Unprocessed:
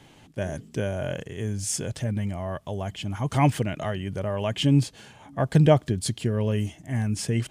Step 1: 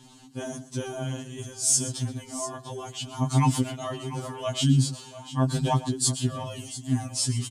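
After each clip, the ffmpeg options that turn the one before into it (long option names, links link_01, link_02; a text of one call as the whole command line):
ffmpeg -i in.wav -af "equalizer=frequency=125:width_type=o:width=1:gain=-3,equalizer=frequency=250:width_type=o:width=1:gain=9,equalizer=frequency=500:width_type=o:width=1:gain=-9,equalizer=frequency=1000:width_type=o:width=1:gain=7,equalizer=frequency=2000:width_type=o:width=1:gain=-9,equalizer=frequency=4000:width_type=o:width=1:gain=7,equalizer=frequency=8000:width_type=o:width=1:gain=10,aecho=1:1:124|694:0.178|0.2,afftfilt=real='re*2.45*eq(mod(b,6),0)':imag='im*2.45*eq(mod(b,6),0)':win_size=2048:overlap=0.75" out.wav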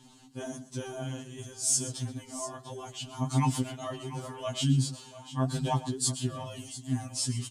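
ffmpeg -i in.wav -af "flanger=delay=3.1:depth=3.6:regen=81:speed=1.8:shape=triangular" out.wav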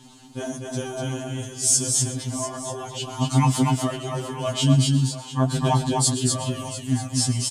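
ffmpeg -i in.wav -af "aecho=1:1:246:0.668,volume=7.5dB" out.wav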